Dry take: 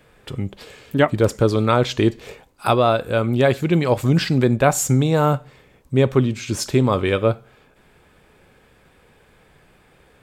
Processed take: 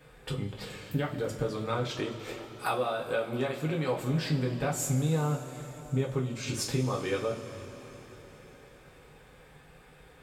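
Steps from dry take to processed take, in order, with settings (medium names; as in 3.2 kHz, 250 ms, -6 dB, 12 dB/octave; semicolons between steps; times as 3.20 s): 1.90–4.13 s: peaking EQ 77 Hz -14 dB 1.5 oct; compression, threshold -26 dBFS, peak gain reduction 15 dB; two-slope reverb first 0.24 s, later 4.6 s, from -20 dB, DRR -3 dB; trim -6 dB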